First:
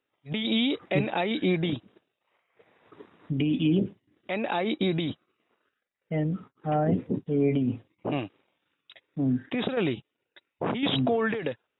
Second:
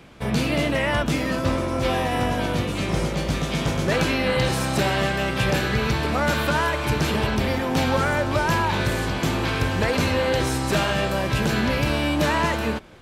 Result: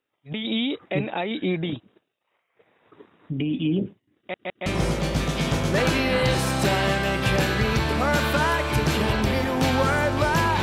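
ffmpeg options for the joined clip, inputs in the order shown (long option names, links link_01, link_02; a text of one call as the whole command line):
ffmpeg -i cue0.wav -i cue1.wav -filter_complex "[0:a]apad=whole_dur=10.62,atrim=end=10.62,asplit=3[link_01][link_02][link_03];[link_01]atrim=end=4.342[link_04];[link_02]atrim=start=4.178:end=4.342[link_05];[link_03]atrim=start=4.178:end=4.342[link_06];[1:a]atrim=start=2.798:end=8.76[link_07];[link_04][link_05]acrossfade=duration=0.004:curve1=hsin:curve2=hsin[link_08];[link_08][link_06]acrossfade=duration=0.004:curve1=hsin:curve2=hsin[link_09];[link_09][link_07]acrossfade=duration=0.004:curve1=hsin:curve2=hsin" out.wav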